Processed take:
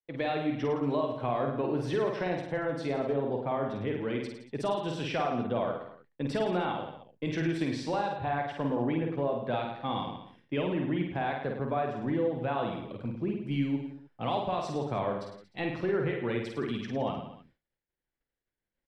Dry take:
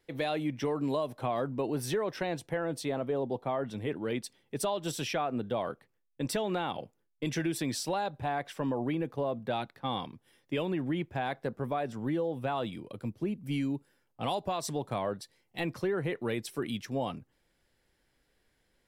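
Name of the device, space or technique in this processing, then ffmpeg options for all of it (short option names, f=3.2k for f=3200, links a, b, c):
hearing-loss simulation: -af "lowpass=3.2k,aecho=1:1:50|105|165.5|232|305.3:0.631|0.398|0.251|0.158|0.1,agate=range=-33dB:threshold=-58dB:ratio=3:detection=peak"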